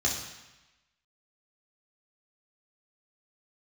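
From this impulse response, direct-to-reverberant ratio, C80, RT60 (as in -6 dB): -3.5 dB, 7.0 dB, 1.0 s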